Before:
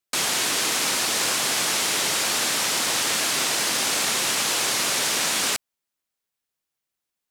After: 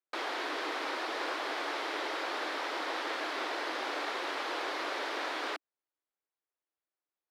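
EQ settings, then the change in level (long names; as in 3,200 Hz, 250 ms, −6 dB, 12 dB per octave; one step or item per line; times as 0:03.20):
elliptic high-pass filter 300 Hz, stop band 50 dB
high-frequency loss of the air 360 metres
parametric band 2,700 Hz −5 dB 0.62 octaves
−3.5 dB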